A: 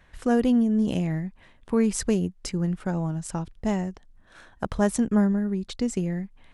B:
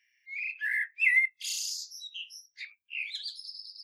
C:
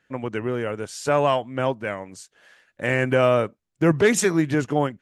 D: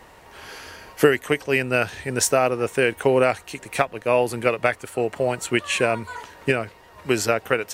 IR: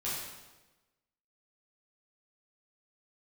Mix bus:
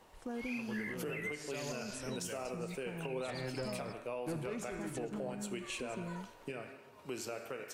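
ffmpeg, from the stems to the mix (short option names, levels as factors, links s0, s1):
-filter_complex "[0:a]volume=0.178[s0];[1:a]highshelf=f=2100:g=-10.5,adelay=100,volume=1.26[s1];[2:a]acrossover=split=410[s2][s3];[s3]acompressor=threshold=0.0562:ratio=6[s4];[s2][s4]amix=inputs=2:normalize=0,asoftclip=type=tanh:threshold=0.133,adelay=450,volume=0.188,asplit=2[s5][s6];[s6]volume=0.178[s7];[3:a]highpass=140,volume=0.224,asplit=2[s8][s9];[s9]volume=0.168[s10];[s0][s5]amix=inputs=2:normalize=0,alimiter=level_in=2.51:limit=0.0631:level=0:latency=1:release=172,volume=0.398,volume=1[s11];[s1][s8]amix=inputs=2:normalize=0,equalizer=f=1800:w=3.6:g=-14.5,alimiter=level_in=1.33:limit=0.0631:level=0:latency=1:release=465,volume=0.75,volume=1[s12];[4:a]atrim=start_sample=2205[s13];[s7][s10]amix=inputs=2:normalize=0[s14];[s14][s13]afir=irnorm=-1:irlink=0[s15];[s11][s12][s15]amix=inputs=3:normalize=0,alimiter=level_in=2.11:limit=0.0631:level=0:latency=1:release=133,volume=0.473"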